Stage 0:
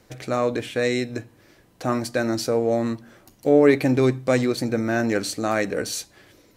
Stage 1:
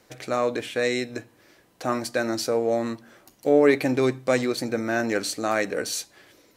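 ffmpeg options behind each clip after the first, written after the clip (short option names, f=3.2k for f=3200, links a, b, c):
-af "lowshelf=f=190:g=-11.5"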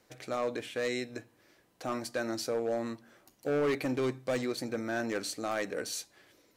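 -af "asoftclip=type=hard:threshold=-17dB,volume=-8dB"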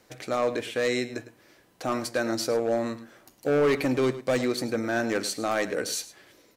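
-filter_complex "[0:a]asplit=2[a][b];[b]adelay=105,volume=-14dB,highshelf=f=4k:g=-2.36[c];[a][c]amix=inputs=2:normalize=0,volume=6.5dB"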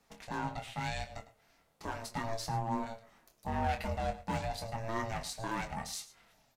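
-filter_complex "[0:a]aeval=exprs='val(0)*sin(2*PI*340*n/s)':c=same,flanger=delay=4:depth=7.7:regen=-42:speed=0.34:shape=triangular,asplit=2[a][b];[b]adelay=25,volume=-7.5dB[c];[a][c]amix=inputs=2:normalize=0,volume=-4dB"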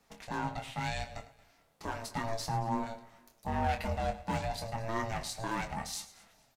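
-af "aecho=1:1:227|454:0.0841|0.0252,volume=1.5dB"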